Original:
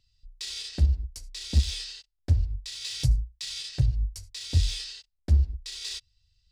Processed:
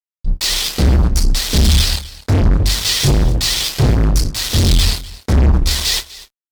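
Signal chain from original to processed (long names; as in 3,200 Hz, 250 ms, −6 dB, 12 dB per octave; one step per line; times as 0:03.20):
rectangular room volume 130 cubic metres, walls furnished, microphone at 3.6 metres
fuzz pedal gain 27 dB, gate −32 dBFS
double-tracking delay 27 ms −12 dB
single-tap delay 249 ms −18.5 dB
pitch vibrato 14 Hz 86 cents
level +4 dB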